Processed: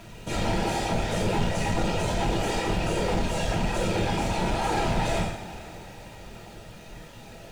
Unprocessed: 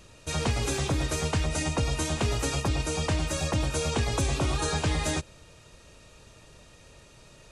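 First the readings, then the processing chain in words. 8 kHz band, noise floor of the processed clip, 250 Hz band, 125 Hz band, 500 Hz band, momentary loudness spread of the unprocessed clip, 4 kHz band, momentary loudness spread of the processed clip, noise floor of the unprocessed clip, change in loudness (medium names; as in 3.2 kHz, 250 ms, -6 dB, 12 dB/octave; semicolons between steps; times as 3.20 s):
-5.0 dB, -45 dBFS, +3.5 dB, -1.0 dB, +4.0 dB, 2 LU, -0.5 dB, 18 LU, -54 dBFS, +1.0 dB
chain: in parallel at 0 dB: peak limiter -26 dBFS, peak gain reduction 10 dB; on the sum: peaking EQ 810 Hz +11 dB 0.24 oct; on a send: flutter echo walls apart 4.1 m, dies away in 0.6 s; on the sum: whisper effect; upward compressor, threshold -42 dBFS; overload inside the chain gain 20.5 dB; two-slope reverb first 0.2 s, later 4.2 s, from -22 dB, DRR 0.5 dB; bit crusher 7-bit; treble shelf 4.3 kHz -11.5 dB; band-stop 1.1 kHz, Q 5.5; trim -4 dB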